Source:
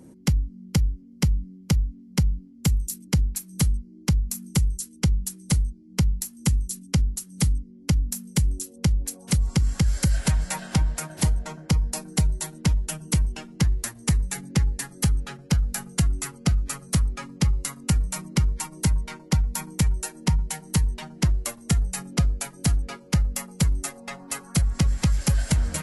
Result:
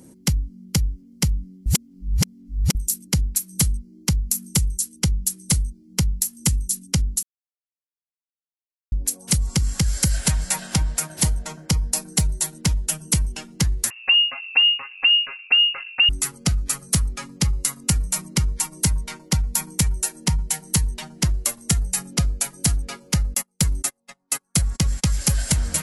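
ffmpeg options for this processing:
-filter_complex "[0:a]asettb=1/sr,asplit=3[a][b][c];[a]atrim=end=13.904[d];[b]atrim=start=13.9:end=16.09,asetpts=PTS-STARTPTS,afade=t=in:d=0.004:c=qsin,afade=t=out:st=2.186:d=0.004:c=qsin,lowpass=f=2.5k:t=q:w=0.5098,lowpass=f=2.5k:t=q:w=0.6013,lowpass=f=2.5k:t=q:w=0.9,lowpass=f=2.5k:t=q:w=2.563,afreqshift=-2900[e];[c]atrim=start=16.086[f];[d][e]acrossfade=d=0.004:c1=hsin:c2=qsin[g];[g][f]acrossfade=d=0.004:c1=qsin:c2=hsin,asettb=1/sr,asplit=3[h][i][j];[h]atrim=end=23.344[k];[i]atrim=start=23.34:end=25.21,asetpts=PTS-STARTPTS,afade=t=in:d=0.004:c=qsin,afade=t=out:st=1.866:d=0.004:c=qsin,agate=range=-31dB:threshold=-33dB:ratio=16:release=100:detection=peak[l];[j]atrim=start=25.206[m];[k][l]acrossfade=d=0.004:c1=hsin:c2=qsin[n];[n][m]acrossfade=d=0.004:c1=qsin:c2=hsin,asplit=5[o][p][q][r][s];[o]atrim=end=1.662[t];[p]atrim=start=1.658:end=2.752,asetpts=PTS-STARTPTS,areverse[u];[q]atrim=start=2.748:end=7.23,asetpts=PTS-STARTPTS,afade=t=out:st=4.478:d=0.004:c=hsin[v];[r]atrim=start=7.23:end=8.92,asetpts=PTS-STARTPTS,volume=0[w];[s]atrim=start=8.92,asetpts=PTS-STARTPTS,afade=t=in:d=0.004:c=hsin[x];[t][u]acrossfade=d=0.004:c1=hsin:c2=hsin[y];[v][w][x]concat=n=3:v=0:a=1[z];[y][z]acrossfade=d=0.004:c1=hsin:c2=hsin,highshelf=f=3.3k:g=10"

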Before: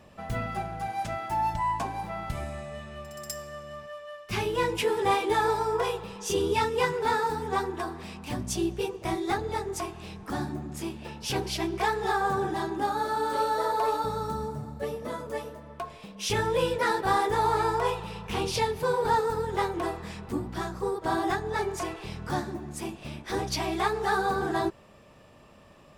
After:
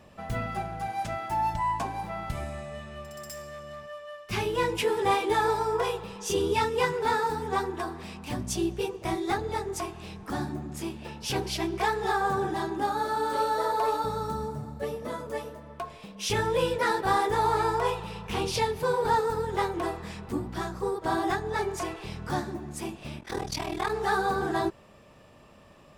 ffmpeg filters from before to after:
-filter_complex "[0:a]asettb=1/sr,asplit=3[a][b][c];[a]atrim=end=3.034[d];[b]atrim=start=3.03:end=3.9,asetpts=PTS-STARTPTS,afade=t=in:d=0.004:c=qsin,afade=t=out:st=0.866:d=0.004:c=qsin,asoftclip=type=hard:threshold=-36.5dB[e];[c]atrim=start=3.896[f];[d][e]acrossfade=d=0.004:c1=hsin:c2=qsin[g];[g][f]acrossfade=d=0.004:c1=qsin:c2=hsin,asettb=1/sr,asplit=3[h][i][j];[h]atrim=end=23.194[k];[i]atrim=start=23.19:end=23.9,asetpts=PTS-STARTPTS,afade=t=in:d=0.004:c=qsin,afade=t=out:st=0.706:d=0.004:c=qsin,aeval=exprs='val(0)*sin(2*PI*20*n/s)':c=same[l];[j]atrim=start=23.896[m];[k][l]acrossfade=d=0.004:c1=hsin:c2=qsin[n];[n][m]acrossfade=d=0.004:c1=qsin:c2=hsin"

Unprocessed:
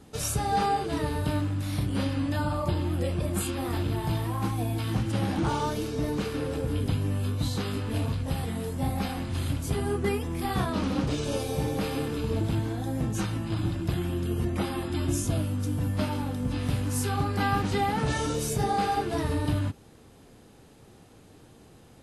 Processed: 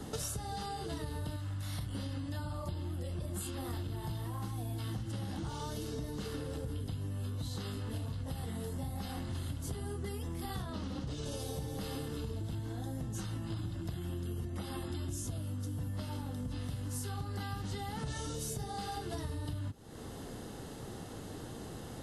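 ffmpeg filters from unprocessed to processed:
-filter_complex "[0:a]asettb=1/sr,asplit=3[a][b][c];[a]atrim=end=1.364[d];[b]atrim=start=1.36:end=1.95,asetpts=PTS-STARTPTS,afade=t=in:d=0.004:c=qsin,afade=t=out:st=0.586:d=0.004:c=qsin,equalizer=f=300:t=o:w=1.9:g=-11[e];[c]atrim=start=1.946[f];[d][e]acrossfade=d=0.004:c1=hsin:c2=qsin[g];[g][f]acrossfade=d=0.004:c1=qsin:c2=hsin,asettb=1/sr,asplit=3[h][i][j];[h]atrim=end=10.624[k];[i]atrim=start=10.62:end=11.26,asetpts=PTS-STARTPTS,afade=t=in:d=0.004:c=qsin,afade=t=out:st=0.636:d=0.004:c=qsin,highshelf=f=7.4k:g=-8[l];[j]atrim=start=11.256[m];[k][l]acrossfade=d=0.004:c1=hsin:c2=qsin[n];[n][m]acrossfade=d=0.004:c1=qsin:c2=hsin,acrossover=split=140|3000[o][p][q];[p]acompressor=threshold=-34dB:ratio=6[r];[o][r][q]amix=inputs=3:normalize=0,bandreject=f=2.4k:w=5.2,acompressor=threshold=-46dB:ratio=6,volume=8.5dB"

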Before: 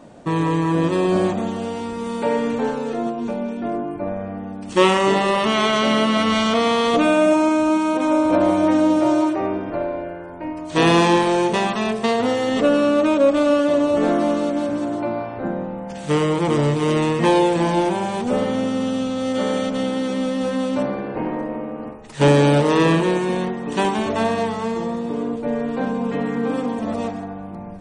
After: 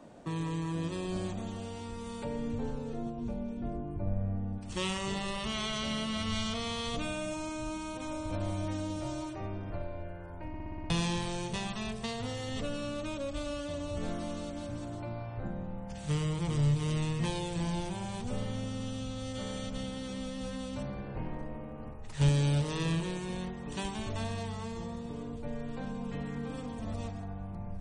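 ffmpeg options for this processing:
-filter_complex "[0:a]asettb=1/sr,asplit=3[a][b][c];[a]atrim=end=2.244[d];[b]atrim=start=2.24:end=4.58,asetpts=PTS-STARTPTS,afade=t=in:d=0.004:c=qsin,afade=t=out:st=2.336:d=0.004:c=qsin,tiltshelf=f=850:g=6[e];[c]atrim=start=4.576[f];[d][e]acrossfade=d=0.004:c1=hsin:c2=qsin[g];[g][f]acrossfade=d=0.004:c1=qsin:c2=hsin,asplit=8[h][i][j][k][l][m][n][o];[h]atrim=end=10.542[p];[i]atrim=start=10.478:end=10.542[q];[j]atrim=start=10.478:end=10.542[r];[k]atrim=start=10.478:end=10.542[s];[l]atrim=start=10.478:end=10.542[t];[m]atrim=start=10.478:end=10.542[u];[n]atrim=start=10.478:end=10.542[v];[o]atrim=start=10.898[w];[p][q]acrossfade=d=0.004:c1=hsin:c2=hsin[x];[x][r]acrossfade=d=0.004:c1=hsin:c2=hsin[y];[y][s]acrossfade=d=0.004:c1=hsin:c2=hsin[z];[z][t]acrossfade=d=0.004:c1=hsin:c2=hsin[aa];[aa][u]acrossfade=d=0.004:c1=hsin:c2=hsin[ab];[ab][v]acrossfade=d=0.004:c1=hsin:c2=hsin[ac];[ac][w]acrossfade=d=0.004:c1=hsin:c2=hsin,asubboost=boost=7.5:cutoff=94,acrossover=split=190|3000[ad][ae][af];[ae]acompressor=threshold=-39dB:ratio=2[ag];[ad][ag][af]amix=inputs=3:normalize=0,volume=-8.5dB"

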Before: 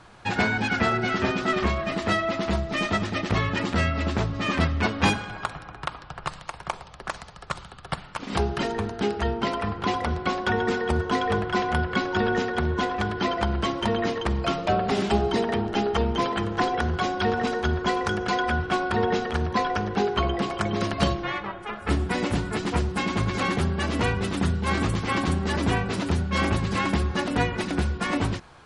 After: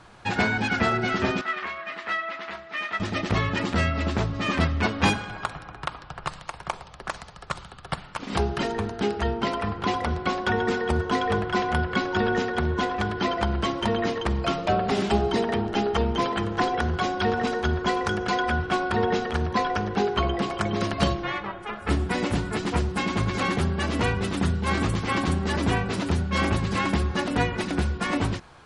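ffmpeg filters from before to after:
-filter_complex "[0:a]asettb=1/sr,asplit=3[a][b][c];[a]atrim=end=1.414[d];[b]atrim=start=1.41:end=3,asetpts=PTS-STARTPTS,afade=t=in:d=0.004:c=qsin,afade=t=out:st=1.586:d=0.004:c=qsin,bandpass=f=1.8k:t=q:w=1.3[e];[c]atrim=start=2.996[f];[d][e]acrossfade=d=0.004:c1=hsin:c2=qsin[g];[g][f]acrossfade=d=0.004:c1=qsin:c2=hsin"

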